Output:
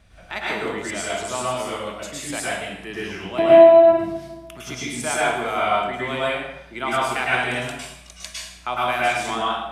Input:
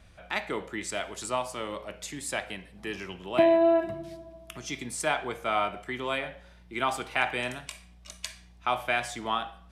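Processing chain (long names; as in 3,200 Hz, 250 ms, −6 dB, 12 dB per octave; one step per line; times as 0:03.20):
0:07.24–0:07.65: surface crackle 13 per second → 56 per second −53 dBFS
dense smooth reverb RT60 0.8 s, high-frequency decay 0.85×, pre-delay 95 ms, DRR −6.5 dB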